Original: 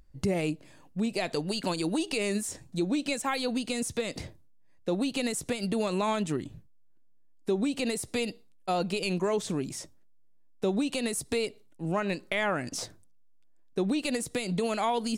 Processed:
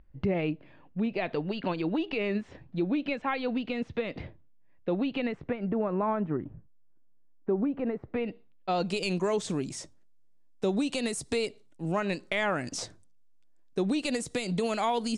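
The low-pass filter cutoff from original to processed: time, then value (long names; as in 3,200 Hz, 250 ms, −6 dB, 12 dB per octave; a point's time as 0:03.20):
low-pass filter 24 dB per octave
0:05.13 3,000 Hz
0:05.78 1,600 Hz
0:08.03 1,600 Hz
0:08.69 4,200 Hz
0:08.90 9,100 Hz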